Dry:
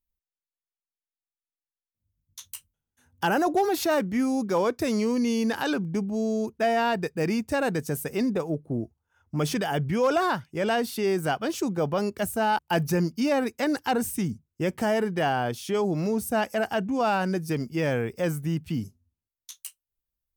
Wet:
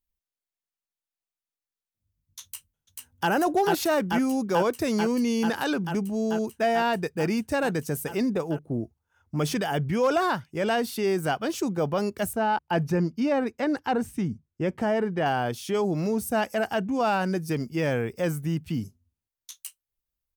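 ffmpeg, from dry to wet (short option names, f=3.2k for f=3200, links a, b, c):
-filter_complex "[0:a]asplit=2[a][b];[b]afade=t=in:st=2.43:d=0.01,afade=t=out:st=3.3:d=0.01,aecho=0:1:440|880|1320|1760|2200|2640|3080|3520|3960|4400|4840|5280:0.794328|0.675179|0.573902|0.487817|0.414644|0.352448|0.299581|0.254643|0.216447|0.18398|0.156383|0.132925[c];[a][c]amix=inputs=2:normalize=0,asettb=1/sr,asplit=3[d][e][f];[d]atrim=end=12.334[g];[e]atrim=start=12.33:end=15.26,asetpts=PTS-STARTPTS,afade=t=in:d=0.004:c=qsin,afade=t=out:st=2.926:d=0.004:c=qsin,aemphasis=mode=reproduction:type=75kf[h];[f]atrim=start=15.256[i];[g][h]acrossfade=d=0.004:c1=hsin:c2=qsin[j];[j][i]acrossfade=d=0.004:c1=qsin:c2=hsin"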